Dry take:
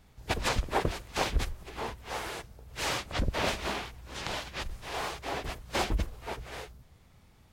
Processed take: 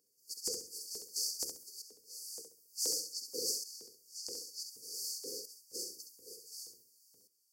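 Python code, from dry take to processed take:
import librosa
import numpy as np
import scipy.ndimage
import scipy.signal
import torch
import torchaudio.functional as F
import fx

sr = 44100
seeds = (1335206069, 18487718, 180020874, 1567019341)

y = fx.octave_divider(x, sr, octaves=1, level_db=-3.0)
y = fx.brickwall_bandstop(y, sr, low_hz=520.0, high_hz=4400.0)
y = fx.high_shelf(y, sr, hz=7100.0, db=8.5)
y = fx.filter_lfo_highpass(y, sr, shape='saw_up', hz=2.1, low_hz=520.0, high_hz=5400.0, q=1.3)
y = fx.echo_feedback(y, sr, ms=67, feedback_pct=26, wet_db=-6.5)
y = fx.tremolo_shape(y, sr, shape='saw_up', hz=0.55, depth_pct=75)
y = y * 10.0 ** (3.0 / 20.0)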